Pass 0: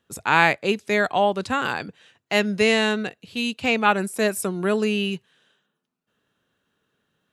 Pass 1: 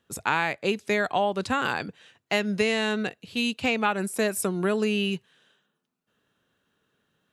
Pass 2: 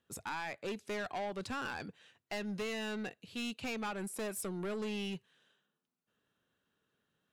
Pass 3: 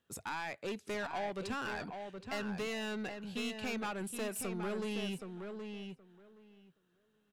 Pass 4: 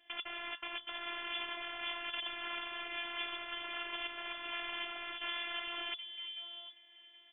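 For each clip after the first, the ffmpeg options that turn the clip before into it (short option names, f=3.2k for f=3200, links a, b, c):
-af "acompressor=threshold=-20dB:ratio=6"
-af "asoftclip=type=tanh:threshold=-25.5dB,volume=-8.5dB"
-filter_complex "[0:a]asplit=2[a][b];[b]adelay=772,lowpass=f=2.7k:p=1,volume=-6dB,asplit=2[c][d];[d]adelay=772,lowpass=f=2.7k:p=1,volume=0.16,asplit=2[e][f];[f]adelay=772,lowpass=f=2.7k:p=1,volume=0.16[g];[a][c][e][g]amix=inputs=4:normalize=0"
-af "aeval=exprs='(mod(224*val(0)+1,2)-1)/224':c=same,lowpass=f=3k:t=q:w=0.5098,lowpass=f=3k:t=q:w=0.6013,lowpass=f=3k:t=q:w=0.9,lowpass=f=3k:t=q:w=2.563,afreqshift=-3500,afftfilt=real='hypot(re,im)*cos(PI*b)':imag='0':win_size=512:overlap=0.75,volume=18dB"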